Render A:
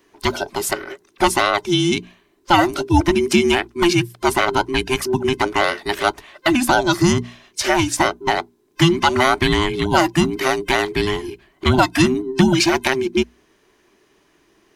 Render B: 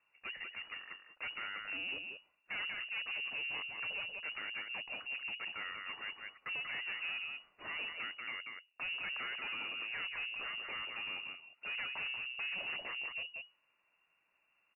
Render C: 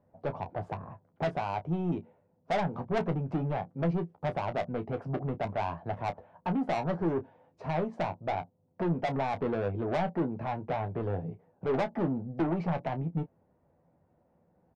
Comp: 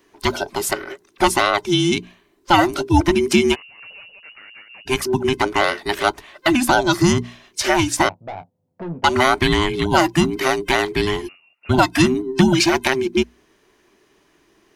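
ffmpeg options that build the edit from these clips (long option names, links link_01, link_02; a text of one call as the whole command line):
ffmpeg -i take0.wav -i take1.wav -i take2.wav -filter_complex "[1:a]asplit=2[link_01][link_02];[0:a]asplit=4[link_03][link_04][link_05][link_06];[link_03]atrim=end=3.56[link_07];[link_01]atrim=start=3.52:end=4.89[link_08];[link_04]atrim=start=4.85:end=8.092[link_09];[2:a]atrim=start=8.088:end=9.042[link_10];[link_05]atrim=start=9.038:end=11.29[link_11];[link_02]atrim=start=11.27:end=11.71[link_12];[link_06]atrim=start=11.69[link_13];[link_07][link_08]acrossfade=duration=0.04:curve1=tri:curve2=tri[link_14];[link_14][link_09]acrossfade=duration=0.04:curve1=tri:curve2=tri[link_15];[link_15][link_10]acrossfade=duration=0.004:curve1=hsin:curve2=hsin[link_16];[link_16][link_11]acrossfade=duration=0.004:curve1=hsin:curve2=hsin[link_17];[link_17][link_12]acrossfade=duration=0.02:curve1=tri:curve2=tri[link_18];[link_18][link_13]acrossfade=duration=0.02:curve1=tri:curve2=tri" out.wav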